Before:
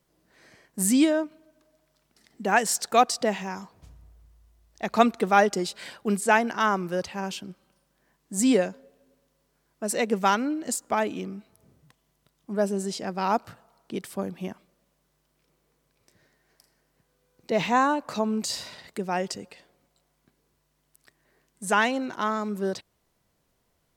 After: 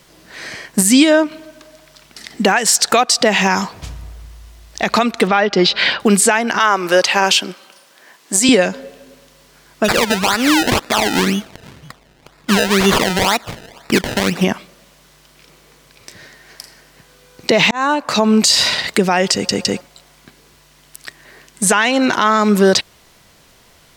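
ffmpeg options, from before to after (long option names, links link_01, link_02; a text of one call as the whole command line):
ffmpeg -i in.wav -filter_complex "[0:a]asettb=1/sr,asplit=3[link_01][link_02][link_03];[link_01]atrim=end=5.274[link_04];[link_02]atrim=start=5.27:end=6,asetpts=PTS-STARTPTS,afade=type=in:duration=0.004:curve=qsin,afade=type=out:start_time=0.726:duration=0.004:curve=qsin,lowpass=frequency=4400:width=0.5412,lowpass=frequency=4400:width=1.3066[link_05];[link_03]atrim=start=5.996[link_06];[link_04][link_05]acrossfade=duration=0.004:curve1=hsin:curve2=qsin[link_07];[link_07][link_06]acrossfade=duration=0.004:curve1=qsin:curve2=hsin,asettb=1/sr,asplit=3[link_08][link_09][link_10];[link_08]atrim=end=6.594[link_11];[link_09]atrim=start=6.59:end=8.49,asetpts=PTS-STARTPTS,afade=type=in:duration=0.004:curve=qsin,afade=type=out:start_time=1.896:duration=0.004:curve=qsin,highpass=350[link_12];[link_10]atrim=start=8.486[link_13];[link_11][link_12]acrossfade=duration=0.004:curve1=hsin:curve2=qsin[link_14];[link_14][link_13]acrossfade=duration=0.004:curve1=qsin:curve2=hsin,asplit=3[link_15][link_16][link_17];[link_15]afade=type=out:start_time=9.84:duration=0.02[link_18];[link_16]acrusher=samples=27:mix=1:aa=0.000001:lfo=1:lforange=27:lforate=2,afade=type=in:start_time=9.84:duration=0.02,afade=type=out:start_time=14.42:duration=0.02[link_19];[link_17]afade=type=in:start_time=14.42:duration=0.02[link_20];[link_18][link_19][link_20]amix=inputs=3:normalize=0,asplit=5[link_21][link_22][link_23][link_24][link_25];[link_21]atrim=end=17.71,asetpts=PTS-STARTPTS,afade=type=out:start_time=17.706:duration=0.004:curve=hsin[link_26];[link_22]atrim=start=17.71:end=19.492,asetpts=PTS-STARTPTS,afade=type=in:duration=0.97[link_27];[link_23]atrim=start=19.328:end=19.492[link_28];[link_24]atrim=start=19.328:end=19.492[link_29];[link_25]atrim=start=19.808[link_30];[link_26][link_27]concat=n=2:v=0:a=1[link_31];[link_31][link_28]acrossfade=duration=0.004:curve1=hsin:curve2=hsin[link_32];[link_32][link_29]acrossfade=duration=0.004:curve1=hsin:curve2=hsin[link_33];[link_33][link_30]acrossfade=duration=0.004:curve1=hsin:curve2=hsin,equalizer=frequency=3300:width=0.37:gain=8.5,acompressor=threshold=-25dB:ratio=16,alimiter=level_in=20.5dB:limit=-1dB:release=50:level=0:latency=1,volume=-1dB" out.wav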